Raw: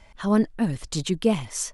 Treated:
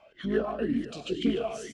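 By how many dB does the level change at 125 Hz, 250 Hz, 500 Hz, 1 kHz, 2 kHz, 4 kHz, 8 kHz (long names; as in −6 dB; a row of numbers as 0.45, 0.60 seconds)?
−11.5, −6.0, −2.5, −5.0, −3.0, −5.5, −18.0 decibels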